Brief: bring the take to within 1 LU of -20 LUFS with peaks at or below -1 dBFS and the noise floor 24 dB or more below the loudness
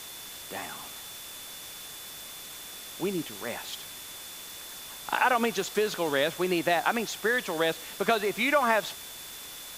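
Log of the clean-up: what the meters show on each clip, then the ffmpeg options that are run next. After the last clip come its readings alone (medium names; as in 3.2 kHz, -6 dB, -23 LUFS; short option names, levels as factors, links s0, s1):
steady tone 3.5 kHz; tone level -47 dBFS; noise floor -43 dBFS; noise floor target -54 dBFS; loudness -30.0 LUFS; peak level -8.0 dBFS; loudness target -20.0 LUFS
-> -af "bandreject=f=3500:w=30"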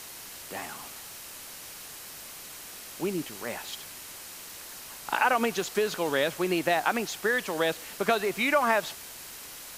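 steady tone not found; noise floor -44 dBFS; noise floor target -53 dBFS
-> -af "afftdn=nr=9:nf=-44"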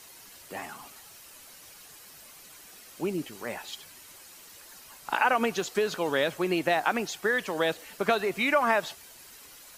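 noise floor -51 dBFS; noise floor target -52 dBFS
-> -af "afftdn=nr=6:nf=-51"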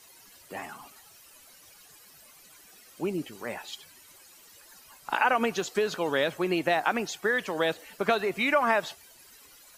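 noise floor -55 dBFS; loudness -28.0 LUFS; peak level -8.0 dBFS; loudness target -20.0 LUFS
-> -af "volume=2.51,alimiter=limit=0.891:level=0:latency=1"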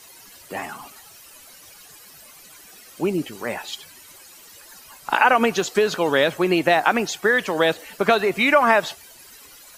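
loudness -20.0 LUFS; peak level -1.0 dBFS; noise floor -47 dBFS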